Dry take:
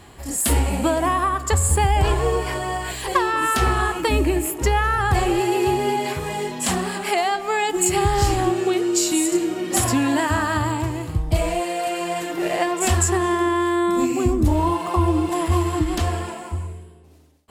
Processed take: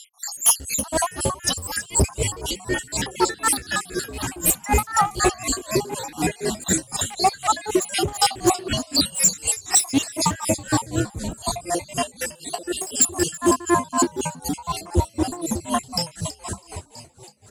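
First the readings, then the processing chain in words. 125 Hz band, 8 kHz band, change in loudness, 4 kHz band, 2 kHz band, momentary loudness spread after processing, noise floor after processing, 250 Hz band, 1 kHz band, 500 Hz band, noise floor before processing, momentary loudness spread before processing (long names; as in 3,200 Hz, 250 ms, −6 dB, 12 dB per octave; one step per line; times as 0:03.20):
−6.5 dB, +4.5 dB, −1.5 dB, +3.5 dB, −4.0 dB, 11 LU, −48 dBFS, −4.0 dB, −3.0 dB, −4.5 dB, −39 dBFS, 7 LU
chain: time-frequency cells dropped at random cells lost 75%
in parallel at −4.5 dB: sine wavefolder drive 6 dB, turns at −8.5 dBFS
on the sum: flat-topped bell 6,900 Hz +10 dB
on a send: echo with shifted repeats 326 ms, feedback 53%, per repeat −93 Hz, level −7.5 dB
on the sum: gain into a clipping stage and back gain 9 dB
high-pass filter 60 Hz
tremolo with a sine in dB 4 Hz, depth 22 dB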